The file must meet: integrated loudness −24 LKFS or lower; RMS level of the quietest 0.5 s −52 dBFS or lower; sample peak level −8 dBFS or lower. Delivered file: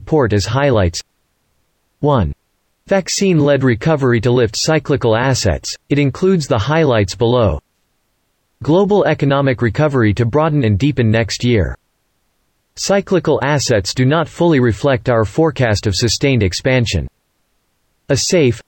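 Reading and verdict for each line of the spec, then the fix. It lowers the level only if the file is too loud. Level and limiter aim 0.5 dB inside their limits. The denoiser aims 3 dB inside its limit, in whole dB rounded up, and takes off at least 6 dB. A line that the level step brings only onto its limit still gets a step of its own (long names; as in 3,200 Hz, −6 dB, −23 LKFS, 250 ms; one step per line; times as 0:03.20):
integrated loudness −14.5 LKFS: out of spec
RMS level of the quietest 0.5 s −64 dBFS: in spec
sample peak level −4.0 dBFS: out of spec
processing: level −10 dB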